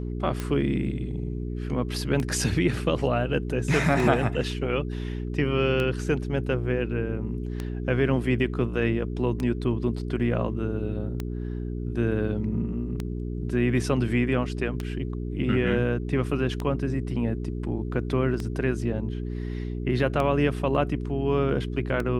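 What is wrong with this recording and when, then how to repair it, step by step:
hum 60 Hz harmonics 7 -31 dBFS
tick 33 1/3 rpm -16 dBFS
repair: de-click; de-hum 60 Hz, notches 7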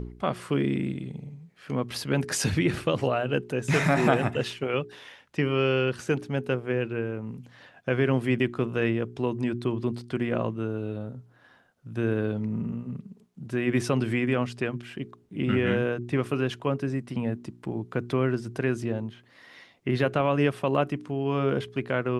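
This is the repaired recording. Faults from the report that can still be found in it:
none

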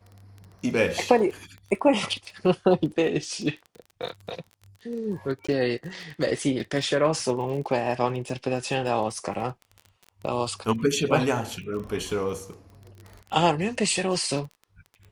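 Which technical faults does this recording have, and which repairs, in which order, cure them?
crackle 21/s -34 dBFS
5.47–5.49 gap 15 ms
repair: de-click; interpolate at 5.47, 15 ms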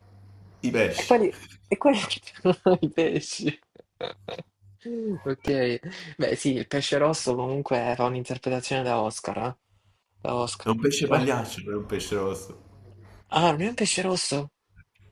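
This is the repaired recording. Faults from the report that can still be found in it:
none

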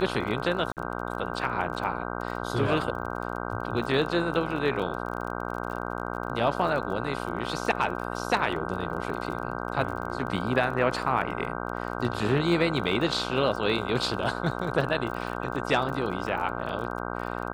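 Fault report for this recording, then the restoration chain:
buzz 60 Hz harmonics 26 -33 dBFS
crackle 31/s -35 dBFS
0.72–0.77 gap 48 ms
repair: de-click; de-hum 60 Hz, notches 26; interpolate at 0.72, 48 ms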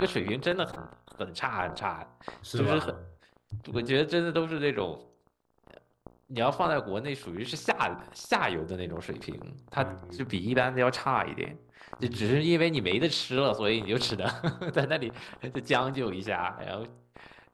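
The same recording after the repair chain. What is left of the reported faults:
none

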